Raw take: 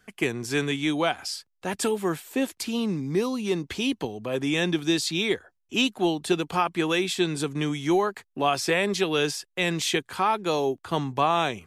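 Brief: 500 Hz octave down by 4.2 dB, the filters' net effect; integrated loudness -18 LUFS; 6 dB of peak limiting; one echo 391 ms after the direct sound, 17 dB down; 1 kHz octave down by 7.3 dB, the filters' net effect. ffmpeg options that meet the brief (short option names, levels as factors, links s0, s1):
-af "equalizer=f=500:t=o:g=-4,equalizer=f=1000:t=o:g=-8.5,alimiter=limit=0.126:level=0:latency=1,aecho=1:1:391:0.141,volume=3.76"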